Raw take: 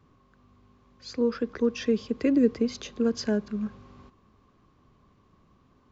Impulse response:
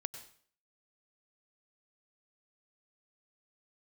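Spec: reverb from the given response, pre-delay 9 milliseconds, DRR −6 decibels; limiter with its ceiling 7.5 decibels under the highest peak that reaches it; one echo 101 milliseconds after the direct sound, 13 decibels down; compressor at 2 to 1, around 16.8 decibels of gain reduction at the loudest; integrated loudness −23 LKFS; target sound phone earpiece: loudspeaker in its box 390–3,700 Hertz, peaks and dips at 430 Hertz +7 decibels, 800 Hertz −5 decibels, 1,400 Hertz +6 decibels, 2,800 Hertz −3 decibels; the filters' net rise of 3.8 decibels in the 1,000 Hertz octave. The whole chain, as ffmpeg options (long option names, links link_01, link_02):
-filter_complex "[0:a]equalizer=frequency=1000:width_type=o:gain=3,acompressor=threshold=-49dB:ratio=2,alimiter=level_in=11dB:limit=-24dB:level=0:latency=1,volume=-11dB,aecho=1:1:101:0.224,asplit=2[link_01][link_02];[1:a]atrim=start_sample=2205,adelay=9[link_03];[link_02][link_03]afir=irnorm=-1:irlink=0,volume=7dB[link_04];[link_01][link_04]amix=inputs=2:normalize=0,highpass=390,equalizer=frequency=430:width_type=q:width=4:gain=7,equalizer=frequency=800:width_type=q:width=4:gain=-5,equalizer=frequency=1400:width_type=q:width=4:gain=6,equalizer=frequency=2800:width_type=q:width=4:gain=-3,lowpass=frequency=3700:width=0.5412,lowpass=frequency=3700:width=1.3066,volume=16.5dB"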